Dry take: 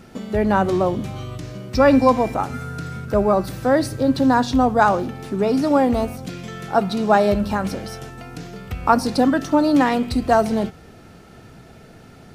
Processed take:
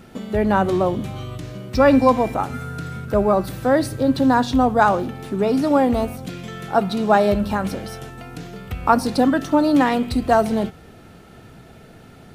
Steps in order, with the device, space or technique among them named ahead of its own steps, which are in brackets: exciter from parts (in parallel at -10 dB: HPF 2700 Hz 24 dB/oct + soft clip -24.5 dBFS, distortion -17 dB + HPF 3500 Hz 24 dB/oct)

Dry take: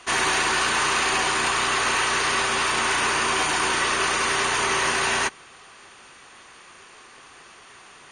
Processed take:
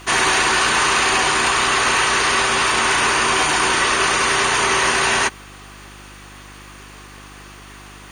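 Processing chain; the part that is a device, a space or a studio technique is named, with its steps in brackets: video cassette with head-switching buzz (buzz 50 Hz, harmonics 7, -49 dBFS -4 dB/oct; white noise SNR 38 dB); gain +5.5 dB

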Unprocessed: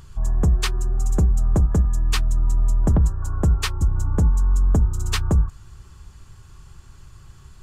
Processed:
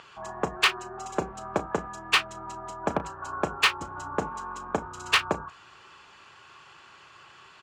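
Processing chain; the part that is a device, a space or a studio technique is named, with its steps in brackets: megaphone (BPF 590–3300 Hz; bell 2700 Hz +5.5 dB 0.45 oct; hard clip -21 dBFS, distortion -15 dB; doubler 34 ms -12.5 dB); gain +7.5 dB

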